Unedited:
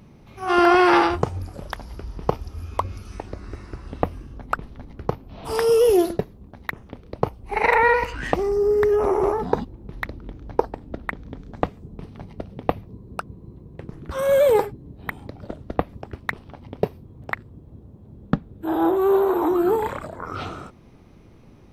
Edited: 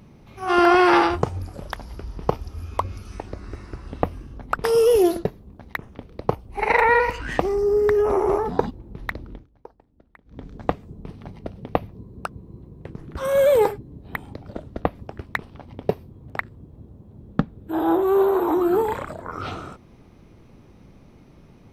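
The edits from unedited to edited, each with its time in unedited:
4.64–5.58 s: delete
10.24–11.37 s: dip -23 dB, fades 0.18 s

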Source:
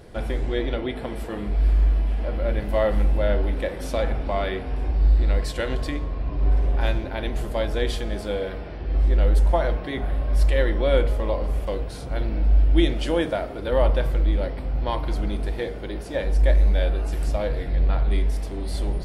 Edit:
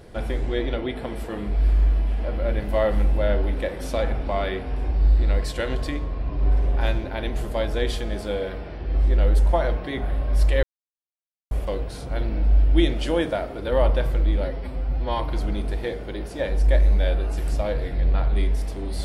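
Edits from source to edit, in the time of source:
10.63–11.51 s: mute
14.44–14.94 s: stretch 1.5×

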